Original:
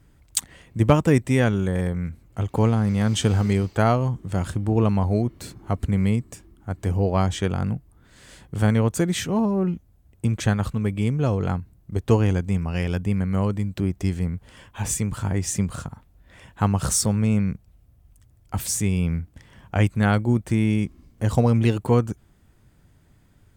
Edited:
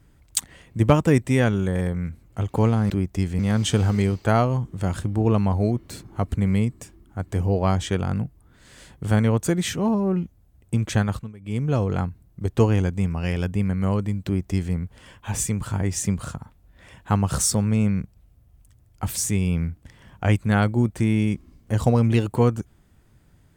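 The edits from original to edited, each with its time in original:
10.58–11.16 dip -20 dB, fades 0.26 s
13.76–14.25 copy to 2.9

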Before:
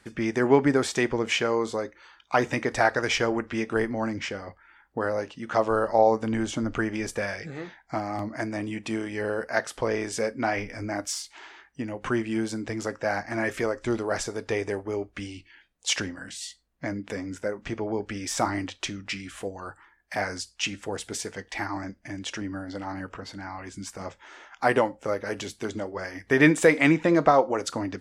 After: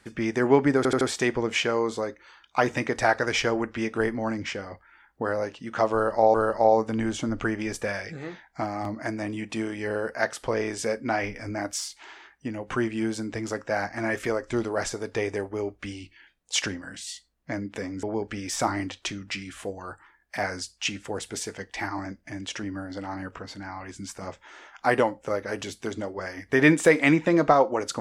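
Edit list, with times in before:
0.77 stutter 0.08 s, 4 plays
5.68–6.1 loop, 2 plays
17.37–17.81 cut

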